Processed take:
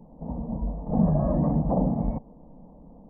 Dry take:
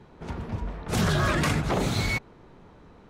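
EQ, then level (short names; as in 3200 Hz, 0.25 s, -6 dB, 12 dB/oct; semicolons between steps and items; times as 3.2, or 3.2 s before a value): Gaussian blur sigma 10 samples; fixed phaser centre 380 Hz, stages 6; +7.0 dB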